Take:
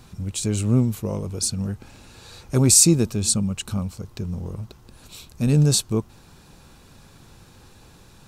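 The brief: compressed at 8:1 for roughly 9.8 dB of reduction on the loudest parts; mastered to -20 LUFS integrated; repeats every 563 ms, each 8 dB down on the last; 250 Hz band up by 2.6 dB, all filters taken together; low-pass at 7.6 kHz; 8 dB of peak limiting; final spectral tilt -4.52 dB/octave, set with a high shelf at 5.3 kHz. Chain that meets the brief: low-pass 7.6 kHz; peaking EQ 250 Hz +3.5 dB; treble shelf 5.3 kHz +9 dB; compression 8:1, threshold -17 dBFS; peak limiter -16.5 dBFS; feedback delay 563 ms, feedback 40%, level -8 dB; trim +7 dB

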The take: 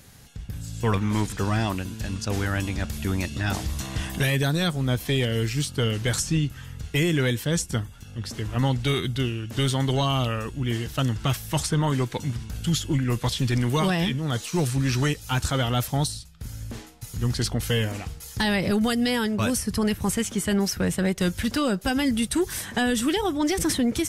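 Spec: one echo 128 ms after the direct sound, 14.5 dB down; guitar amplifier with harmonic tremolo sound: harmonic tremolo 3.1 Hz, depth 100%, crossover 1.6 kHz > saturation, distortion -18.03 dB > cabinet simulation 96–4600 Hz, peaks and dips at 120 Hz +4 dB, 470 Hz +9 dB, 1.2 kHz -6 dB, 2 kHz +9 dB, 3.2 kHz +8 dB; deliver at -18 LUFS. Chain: delay 128 ms -14.5 dB; harmonic tremolo 3.1 Hz, depth 100%, crossover 1.6 kHz; saturation -20 dBFS; cabinet simulation 96–4600 Hz, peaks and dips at 120 Hz +4 dB, 470 Hz +9 dB, 1.2 kHz -6 dB, 2 kHz +9 dB, 3.2 kHz +8 dB; trim +10.5 dB

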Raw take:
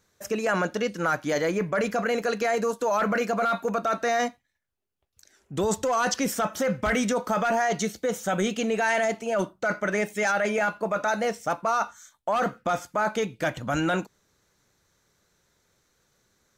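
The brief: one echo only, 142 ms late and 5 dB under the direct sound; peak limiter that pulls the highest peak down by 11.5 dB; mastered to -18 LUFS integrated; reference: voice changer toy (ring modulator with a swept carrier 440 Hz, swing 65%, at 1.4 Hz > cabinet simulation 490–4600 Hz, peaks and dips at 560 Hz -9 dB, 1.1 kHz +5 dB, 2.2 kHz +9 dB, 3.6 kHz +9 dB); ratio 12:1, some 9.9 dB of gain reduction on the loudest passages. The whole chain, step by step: compression 12:1, threshold -31 dBFS; peak limiter -30.5 dBFS; delay 142 ms -5 dB; ring modulator with a swept carrier 440 Hz, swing 65%, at 1.4 Hz; cabinet simulation 490–4600 Hz, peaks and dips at 560 Hz -9 dB, 1.1 kHz +5 dB, 2.2 kHz +9 dB, 3.6 kHz +9 dB; trim +22 dB

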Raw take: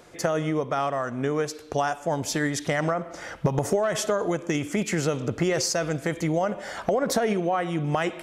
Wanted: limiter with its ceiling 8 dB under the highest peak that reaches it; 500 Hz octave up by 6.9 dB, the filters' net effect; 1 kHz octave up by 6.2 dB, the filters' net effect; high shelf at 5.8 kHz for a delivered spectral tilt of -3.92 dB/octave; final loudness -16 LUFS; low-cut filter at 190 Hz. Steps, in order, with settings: high-pass 190 Hz; peaking EQ 500 Hz +7 dB; peaking EQ 1 kHz +5.5 dB; treble shelf 5.8 kHz +5.5 dB; trim +7.5 dB; peak limiter -5 dBFS

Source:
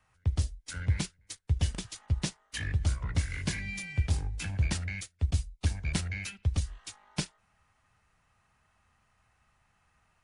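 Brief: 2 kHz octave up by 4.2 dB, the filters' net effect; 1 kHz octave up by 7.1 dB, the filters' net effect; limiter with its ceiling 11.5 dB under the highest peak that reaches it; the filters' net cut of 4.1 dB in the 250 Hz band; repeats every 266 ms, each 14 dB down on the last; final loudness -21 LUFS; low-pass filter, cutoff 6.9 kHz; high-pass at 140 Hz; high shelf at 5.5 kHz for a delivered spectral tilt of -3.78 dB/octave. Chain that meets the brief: high-pass 140 Hz; low-pass 6.9 kHz; peaking EQ 250 Hz -5 dB; peaking EQ 1 kHz +8.5 dB; peaking EQ 2 kHz +3.5 dB; treble shelf 5.5 kHz -4 dB; peak limiter -27 dBFS; feedback delay 266 ms, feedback 20%, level -14 dB; trim +18 dB

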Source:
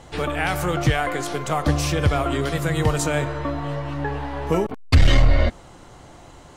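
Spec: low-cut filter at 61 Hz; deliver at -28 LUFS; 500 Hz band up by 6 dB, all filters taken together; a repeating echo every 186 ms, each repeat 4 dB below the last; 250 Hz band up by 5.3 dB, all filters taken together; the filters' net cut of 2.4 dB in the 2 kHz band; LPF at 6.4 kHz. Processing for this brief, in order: high-pass 61 Hz; low-pass 6.4 kHz; peaking EQ 250 Hz +5.5 dB; peaking EQ 500 Hz +6 dB; peaking EQ 2 kHz -3.5 dB; feedback delay 186 ms, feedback 63%, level -4 dB; trim -10 dB

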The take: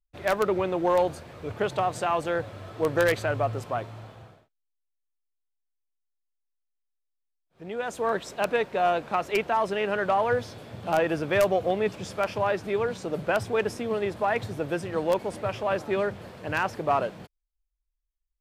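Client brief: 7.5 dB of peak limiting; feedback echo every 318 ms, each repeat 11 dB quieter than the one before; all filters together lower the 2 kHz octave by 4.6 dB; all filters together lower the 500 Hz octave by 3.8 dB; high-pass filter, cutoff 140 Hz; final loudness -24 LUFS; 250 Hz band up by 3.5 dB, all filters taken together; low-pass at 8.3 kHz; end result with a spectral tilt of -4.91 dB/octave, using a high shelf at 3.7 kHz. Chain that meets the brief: high-pass 140 Hz; low-pass 8.3 kHz; peaking EQ 250 Hz +9 dB; peaking EQ 500 Hz -7 dB; peaking EQ 2 kHz -7 dB; treble shelf 3.7 kHz +3.5 dB; peak limiter -20 dBFS; feedback delay 318 ms, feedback 28%, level -11 dB; trim +7 dB

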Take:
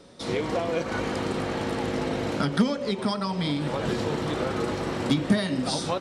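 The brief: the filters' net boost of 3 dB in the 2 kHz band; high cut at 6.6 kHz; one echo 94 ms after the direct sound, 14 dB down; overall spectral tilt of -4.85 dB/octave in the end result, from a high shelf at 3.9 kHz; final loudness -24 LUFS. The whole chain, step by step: low-pass 6.6 kHz; peaking EQ 2 kHz +5.5 dB; treble shelf 3.9 kHz -7.5 dB; delay 94 ms -14 dB; trim +3 dB

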